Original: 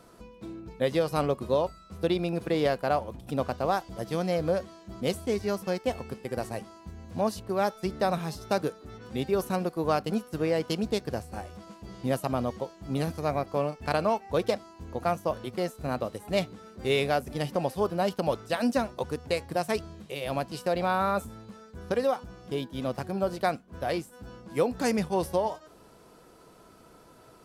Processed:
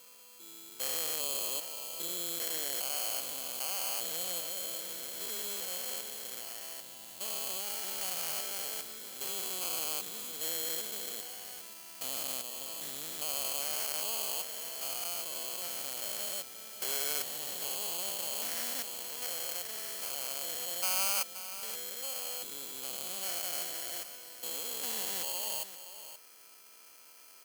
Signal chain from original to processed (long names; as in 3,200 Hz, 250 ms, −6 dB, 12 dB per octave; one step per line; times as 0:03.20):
spectrum averaged block by block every 400 ms
low-shelf EQ 140 Hz −4 dB
in parallel at −2.5 dB: brickwall limiter −28 dBFS, peak gain reduction 11.5 dB
on the sum: sample-rate reduction 3,700 Hz, jitter 0%
first difference
on a send: single-tap delay 526 ms −12 dB
on the sum: level +5.5 dB